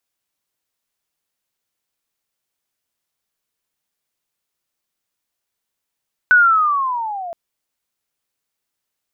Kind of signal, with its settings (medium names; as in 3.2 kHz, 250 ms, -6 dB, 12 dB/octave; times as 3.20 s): sweep linear 1.5 kHz -> 660 Hz -6.5 dBFS -> -26 dBFS 1.02 s